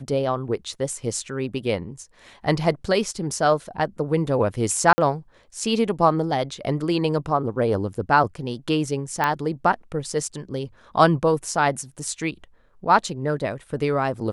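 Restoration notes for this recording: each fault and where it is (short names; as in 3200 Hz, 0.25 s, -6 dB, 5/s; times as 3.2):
0.74 gap 3.2 ms
4.93–4.98 gap 50 ms
9.24 pop -8 dBFS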